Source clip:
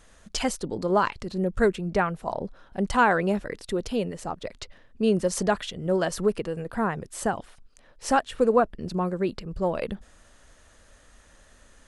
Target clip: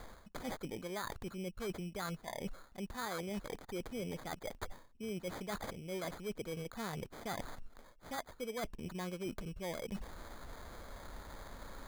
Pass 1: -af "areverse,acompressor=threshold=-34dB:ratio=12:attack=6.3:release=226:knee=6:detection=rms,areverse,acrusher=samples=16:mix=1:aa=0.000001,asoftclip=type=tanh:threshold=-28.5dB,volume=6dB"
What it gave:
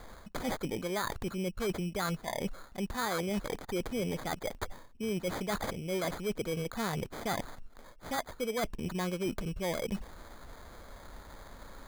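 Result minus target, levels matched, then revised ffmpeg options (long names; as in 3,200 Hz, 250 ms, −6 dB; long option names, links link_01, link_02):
downward compressor: peak gain reduction −8 dB
-af "areverse,acompressor=threshold=-43dB:ratio=12:attack=6.3:release=226:knee=6:detection=rms,areverse,acrusher=samples=16:mix=1:aa=0.000001,asoftclip=type=tanh:threshold=-28.5dB,volume=6dB"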